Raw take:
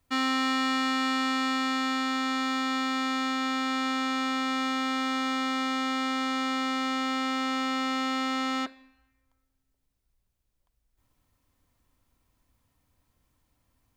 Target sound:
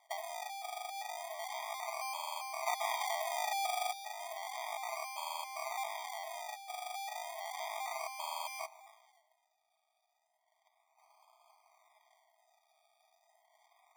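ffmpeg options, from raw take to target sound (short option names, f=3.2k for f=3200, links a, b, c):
-filter_complex "[0:a]highpass=1.1k,acompressor=threshold=-46dB:ratio=10,acrusher=samples=33:mix=1:aa=0.000001:lfo=1:lforange=19.8:lforate=0.33,asettb=1/sr,asplit=3[a][b][c];[a]atrim=end=2.664[d];[b]atrim=start=2.66:end=3.93,asetpts=PTS-STARTPTS,afade=t=in:d=0.004:c=qsin,afade=t=out:st=1.266:d=0.004:c=qsin,acontrast=75[e];[c]atrim=start=3.926[f];[d][e]acrossfade=d=0.004:c1=hsin:c2=qsin[g];[g][f]acrossfade=d=0.004:c1=qsin:c2=hsin,afftfilt=real='re*eq(mod(floor(b*sr/1024/630),2),1)':imag='im*eq(mod(floor(b*sr/1024/630),2),1)':win_size=1024:overlap=0.75,volume=16dB"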